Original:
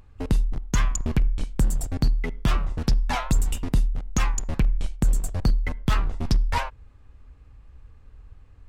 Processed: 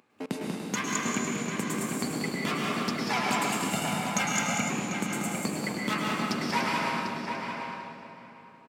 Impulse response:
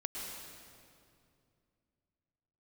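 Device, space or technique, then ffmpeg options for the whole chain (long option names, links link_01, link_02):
stadium PA: -filter_complex "[0:a]highpass=frequency=160:poles=1,highpass=frequency=180:width=0.5412,highpass=frequency=180:width=1.3066,equalizer=frequency=2300:width_type=o:width=0.31:gain=5,aecho=1:1:189.5|291.5:0.501|0.282[link_01];[1:a]atrim=start_sample=2205[link_02];[link_01][link_02]afir=irnorm=-1:irlink=0,asettb=1/sr,asplit=3[link_03][link_04][link_05];[link_03]atrim=end=3.734[link_06];[link_04]atrim=start=3.73:end=4.7,asetpts=PTS-STARTPTS,afade=type=in:duration=0.004:curve=qsin,afade=type=out:start_time=0.966:duration=0.004:curve=qsin,aecho=1:1:1.4:0.92,atrim=end_sample=42777[link_07];[link_05]atrim=start=4.696[link_08];[link_06][link_07]acrossfade=duration=0.004:curve1=hsin:curve2=qsin[link_09];[link_09][link_08]acrossfade=duration=0.004:curve1=qsin:curve2=hsin,asplit=2[link_10][link_11];[link_11]adelay=745,lowpass=frequency=2800:poles=1,volume=-5dB,asplit=2[link_12][link_13];[link_13]adelay=745,lowpass=frequency=2800:poles=1,volume=0.17,asplit=2[link_14][link_15];[link_15]adelay=745,lowpass=frequency=2800:poles=1,volume=0.17[link_16];[link_10][link_12][link_14][link_16]amix=inputs=4:normalize=0"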